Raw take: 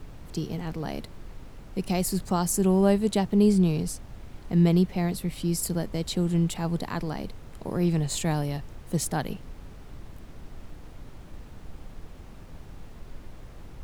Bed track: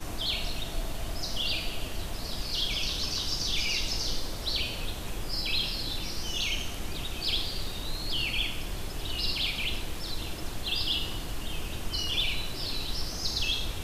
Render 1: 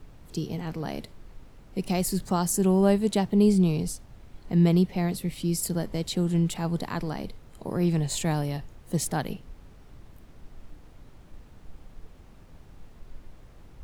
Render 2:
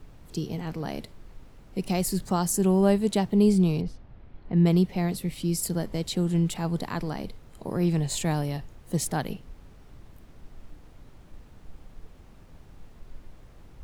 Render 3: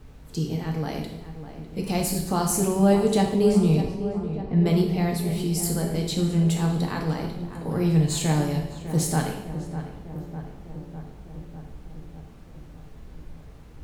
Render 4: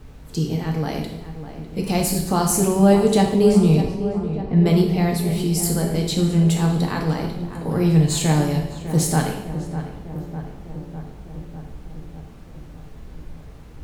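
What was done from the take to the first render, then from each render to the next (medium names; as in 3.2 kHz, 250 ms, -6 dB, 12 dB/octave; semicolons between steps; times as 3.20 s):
noise print and reduce 6 dB
3.81–4.66 s: distance through air 310 m
on a send: filtered feedback delay 602 ms, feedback 71%, low-pass 1.8 kHz, level -11 dB; on the sum: two-slope reverb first 0.79 s, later 2.2 s, from -26 dB, DRR 0.5 dB
trim +4.5 dB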